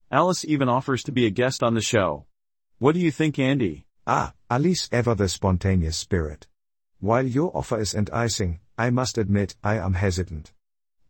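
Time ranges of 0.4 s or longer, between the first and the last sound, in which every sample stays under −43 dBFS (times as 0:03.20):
0:02.22–0:02.81
0:06.43–0:07.02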